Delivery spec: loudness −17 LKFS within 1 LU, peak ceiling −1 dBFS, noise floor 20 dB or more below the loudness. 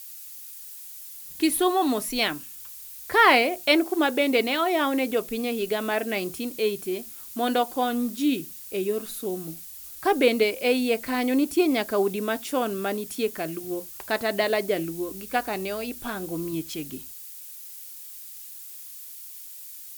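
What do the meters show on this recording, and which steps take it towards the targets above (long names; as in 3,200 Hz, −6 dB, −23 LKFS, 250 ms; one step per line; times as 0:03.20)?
background noise floor −42 dBFS; target noise floor −45 dBFS; integrated loudness −25.0 LKFS; sample peak −4.0 dBFS; target loudness −17.0 LKFS
→ noise reduction from a noise print 6 dB
level +8 dB
brickwall limiter −1 dBFS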